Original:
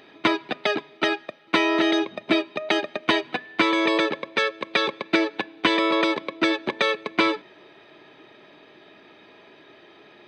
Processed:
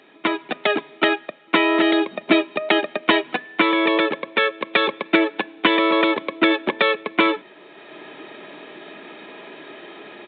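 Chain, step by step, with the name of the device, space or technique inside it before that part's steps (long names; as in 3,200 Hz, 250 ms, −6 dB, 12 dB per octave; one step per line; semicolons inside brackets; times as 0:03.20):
Bluetooth headset (high-pass filter 160 Hz 24 dB per octave; automatic gain control gain up to 12 dB; downsampling to 8,000 Hz; level −1 dB; SBC 64 kbit/s 16,000 Hz)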